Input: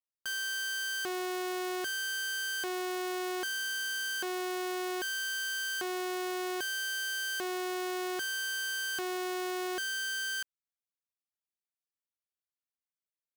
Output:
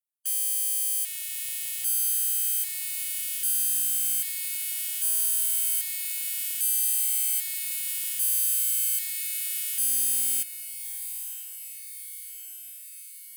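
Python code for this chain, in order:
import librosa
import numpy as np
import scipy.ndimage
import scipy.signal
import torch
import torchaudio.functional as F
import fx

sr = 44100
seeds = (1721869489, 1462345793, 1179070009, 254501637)

p1 = fx.spec_clip(x, sr, under_db=18)
p2 = scipy.signal.sosfilt(scipy.signal.butter(6, 2100.0, 'highpass', fs=sr, output='sos'), p1)
p3 = fx.high_shelf_res(p2, sr, hz=7500.0, db=10.5, q=1.5)
p4 = p3 + fx.echo_diffused(p3, sr, ms=1072, feedback_pct=68, wet_db=-8.5, dry=0)
y = fx.upward_expand(p4, sr, threshold_db=-34.0, expansion=1.5)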